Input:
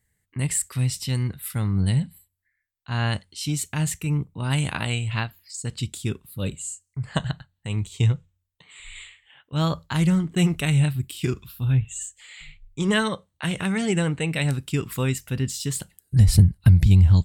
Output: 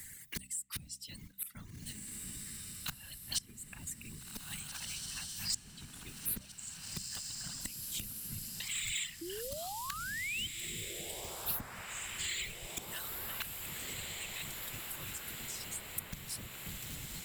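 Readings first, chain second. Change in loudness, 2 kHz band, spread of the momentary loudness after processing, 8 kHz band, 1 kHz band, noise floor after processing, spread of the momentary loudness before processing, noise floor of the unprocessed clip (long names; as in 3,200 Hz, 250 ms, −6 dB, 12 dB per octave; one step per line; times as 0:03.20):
−15.5 dB, −11.0 dB, 8 LU, −6.5 dB, −13.0 dB, −54 dBFS, 15 LU, −77 dBFS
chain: one scale factor per block 5 bits
spring reverb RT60 1.4 s, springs 53 ms, DRR 18 dB
random phases in short frames
hard clipping −13.5 dBFS, distortion −10 dB
gate with flip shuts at −27 dBFS, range −28 dB
guitar amp tone stack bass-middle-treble 5-5-5
sound drawn into the spectrogram rise, 0:09.21–0:10.47, 320–3,200 Hz −54 dBFS
reverb reduction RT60 1.7 s
high-shelf EQ 4,500 Hz +9 dB
hum removal 64.74 Hz, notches 4
on a send: feedback delay with all-pass diffusion 1,803 ms, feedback 62%, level −8.5 dB
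on the sum: multiband upward and downward compressor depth 70%
level +14 dB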